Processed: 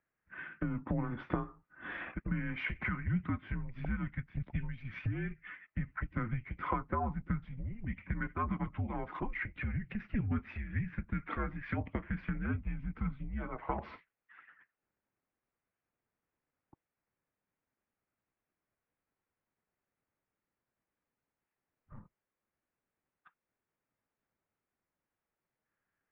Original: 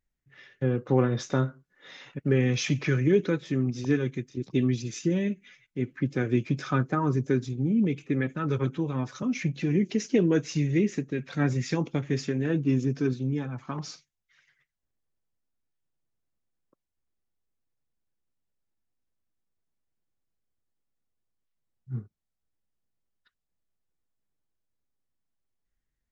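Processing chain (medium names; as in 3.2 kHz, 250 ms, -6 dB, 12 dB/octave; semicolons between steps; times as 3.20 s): compression 10:1, threshold -34 dBFS, peak gain reduction 17.5 dB; mistuned SSB -230 Hz 320–2600 Hz; trim +7.5 dB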